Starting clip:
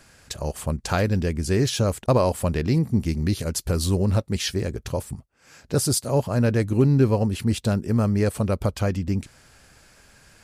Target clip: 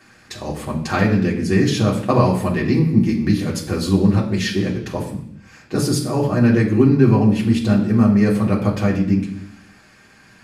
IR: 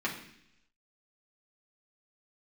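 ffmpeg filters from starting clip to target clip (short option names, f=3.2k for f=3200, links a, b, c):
-filter_complex "[1:a]atrim=start_sample=2205[a];[0:a][a]afir=irnorm=-1:irlink=0,volume=-1dB"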